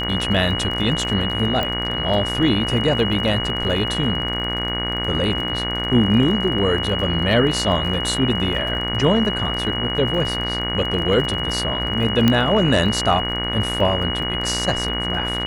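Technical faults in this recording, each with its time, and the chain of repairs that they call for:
mains buzz 60 Hz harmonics 38 −27 dBFS
surface crackle 36 per second −28 dBFS
whistle 2,900 Hz −24 dBFS
0:01.63: click −10 dBFS
0:12.28: click −3 dBFS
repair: click removal
hum removal 60 Hz, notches 38
notch filter 2,900 Hz, Q 30

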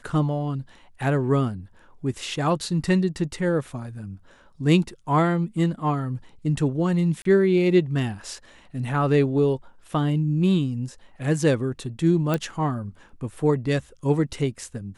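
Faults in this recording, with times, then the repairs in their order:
0:07.22–0:07.25: drop-out 33 ms
0:12.34: click −11 dBFS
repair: click removal
repair the gap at 0:07.22, 33 ms

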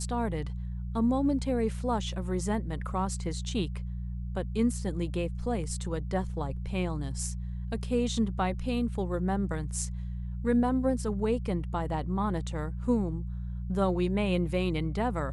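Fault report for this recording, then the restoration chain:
mains hum 60 Hz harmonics 3 −35 dBFS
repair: hum removal 60 Hz, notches 3

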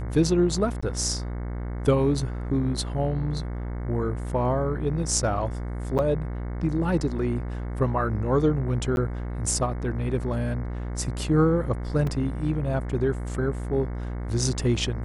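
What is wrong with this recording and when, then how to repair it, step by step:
mains buzz 60 Hz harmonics 37 −31 dBFS
0:00.81–0:00.82: drop-out 15 ms
0:05.98–0:05.99: drop-out 8.2 ms
0:08.96–0:08.97: drop-out 11 ms
0:12.07: drop-out 3 ms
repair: hum removal 60 Hz, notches 37
repair the gap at 0:00.81, 15 ms
repair the gap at 0:05.98, 8.2 ms
repair the gap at 0:08.96, 11 ms
repair the gap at 0:12.07, 3 ms

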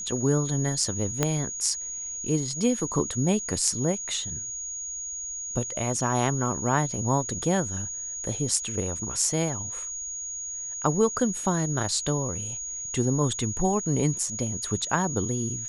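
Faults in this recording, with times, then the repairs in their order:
whistle 6,700 Hz −32 dBFS
0:01.23: click −8 dBFS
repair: click removal
notch filter 6,700 Hz, Q 30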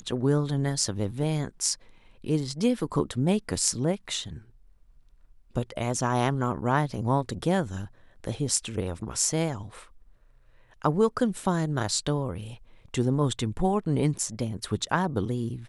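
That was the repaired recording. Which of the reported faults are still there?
0:01.23: click

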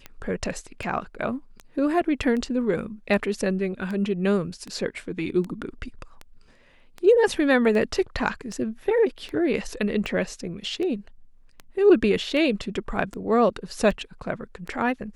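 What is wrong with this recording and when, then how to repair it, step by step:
scratch tick 78 rpm −21 dBFS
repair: click removal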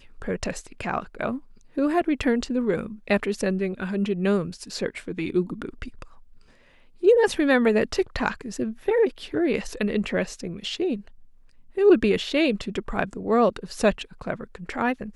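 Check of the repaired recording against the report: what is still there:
none of them is left

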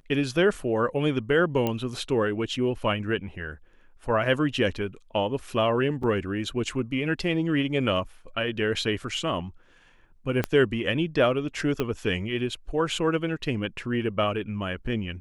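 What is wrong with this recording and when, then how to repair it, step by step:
0:01.67: click −13 dBFS
0:06.03: drop-out 3.8 ms
0:10.44: click −11 dBFS
0:11.80: click −13 dBFS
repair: click removal
repair the gap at 0:06.03, 3.8 ms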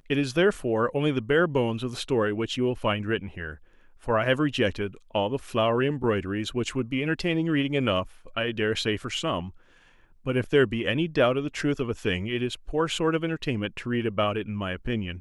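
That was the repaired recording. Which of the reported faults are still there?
0:10.44: click
0:11.80: click

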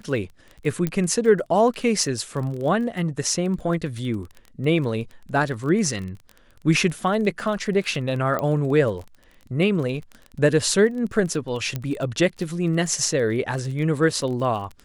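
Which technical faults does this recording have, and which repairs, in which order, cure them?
surface crackle 24 per second −30 dBFS
0:00.87: click −11 dBFS
0:08.39: click −13 dBFS
0:11.76: click −13 dBFS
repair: click removal

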